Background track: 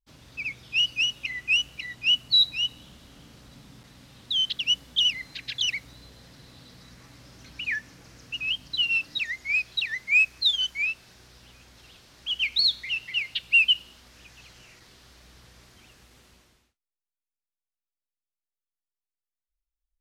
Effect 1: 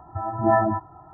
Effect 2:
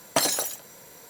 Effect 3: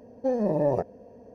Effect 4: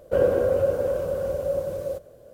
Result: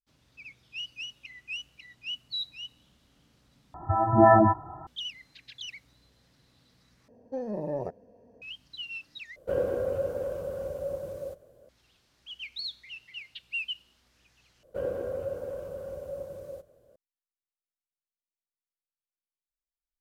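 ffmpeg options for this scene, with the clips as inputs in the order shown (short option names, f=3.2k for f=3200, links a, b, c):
-filter_complex "[4:a]asplit=2[a][b];[0:a]volume=-14.5dB[c];[1:a]alimiter=level_in=10.5dB:limit=-1dB:release=50:level=0:latency=1[d];[c]asplit=5[e][f][g][h][i];[e]atrim=end=3.744[j];[d]atrim=end=1.13,asetpts=PTS-STARTPTS,volume=-6.5dB[k];[f]atrim=start=4.866:end=7.084[l];[3:a]atrim=end=1.34,asetpts=PTS-STARTPTS,volume=-8.5dB[m];[g]atrim=start=8.416:end=9.364[n];[a]atrim=end=2.33,asetpts=PTS-STARTPTS,volume=-8dB[o];[h]atrim=start=11.686:end=14.634[p];[b]atrim=end=2.33,asetpts=PTS-STARTPTS,volume=-12dB[q];[i]atrim=start=16.956[r];[j][k]acrossfade=d=0.004:c1=hsin:c2=hsin[s];[s][l]acrossfade=d=0.004:c1=hsin:c2=hsin[t];[t][m]acrossfade=d=0.004:c1=hsin:c2=hsin[u];[u][n]acrossfade=d=0.004:c1=hsin:c2=hsin[v];[v][o]acrossfade=d=0.004:c1=hsin:c2=hsin[w];[w][p]acrossfade=d=0.004:c1=hsin:c2=hsin[x];[x][q]acrossfade=d=0.004:c1=hsin:c2=hsin[y];[y][r]acrossfade=d=0.004:c1=hsin:c2=hsin"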